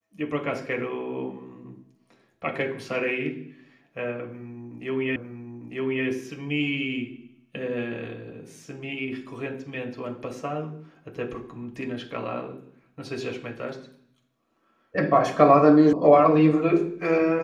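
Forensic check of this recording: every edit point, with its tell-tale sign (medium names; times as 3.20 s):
5.16 s: repeat of the last 0.9 s
15.93 s: sound stops dead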